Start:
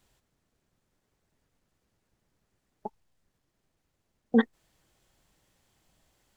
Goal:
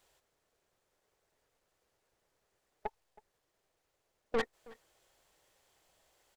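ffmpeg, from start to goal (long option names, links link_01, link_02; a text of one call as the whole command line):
ffmpeg -i in.wav -filter_complex "[0:a]lowshelf=frequency=330:width_type=q:width=1.5:gain=-10,aeval=exprs='(tanh(31.6*val(0)+0.55)-tanh(0.55))/31.6':channel_layout=same,asplit=2[link_01][link_02];[link_02]adelay=320.7,volume=-22dB,highshelf=frequency=4000:gain=-7.22[link_03];[link_01][link_03]amix=inputs=2:normalize=0,volume=2.5dB" out.wav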